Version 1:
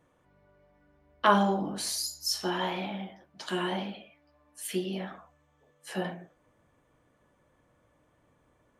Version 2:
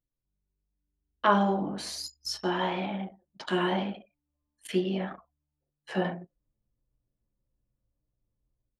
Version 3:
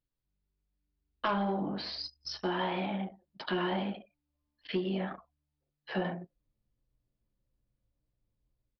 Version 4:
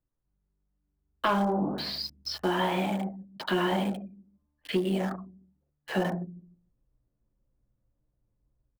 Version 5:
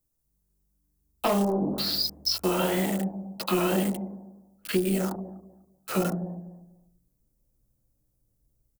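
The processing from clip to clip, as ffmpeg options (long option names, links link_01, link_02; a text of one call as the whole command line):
ffmpeg -i in.wav -af "aemphasis=mode=reproduction:type=50fm,dynaudnorm=framelen=860:gausssize=3:maxgain=8dB,anlmdn=1.58,volume=-4dB" out.wav
ffmpeg -i in.wav -af "aresample=11025,asoftclip=type=tanh:threshold=-17dB,aresample=44100,acompressor=threshold=-29dB:ratio=3" out.wav
ffmpeg -i in.wav -filter_complex "[0:a]acrossover=split=270|1700[link_01][link_02][link_03];[link_01]aecho=1:1:149|298|447:0.376|0.0977|0.0254[link_04];[link_03]aeval=exprs='val(0)*gte(abs(val(0)),0.00376)':channel_layout=same[link_05];[link_04][link_02][link_05]amix=inputs=3:normalize=0,volume=5dB" out.wav
ffmpeg -i in.wav -filter_complex "[0:a]acrossover=split=780|3800[link_01][link_02][link_03];[link_01]aecho=1:1:246|492|738:0.237|0.0522|0.0115[link_04];[link_02]afreqshift=-390[link_05];[link_03]crystalizer=i=3:c=0[link_06];[link_04][link_05][link_06]amix=inputs=3:normalize=0,volume=2.5dB" out.wav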